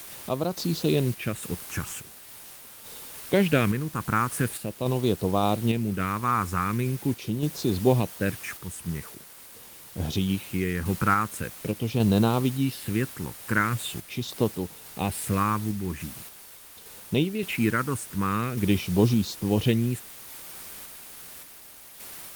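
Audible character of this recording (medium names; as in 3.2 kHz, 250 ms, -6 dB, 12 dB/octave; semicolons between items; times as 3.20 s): phasing stages 4, 0.43 Hz, lowest notch 620–1900 Hz; a quantiser's noise floor 8-bit, dither triangular; random-step tremolo; Opus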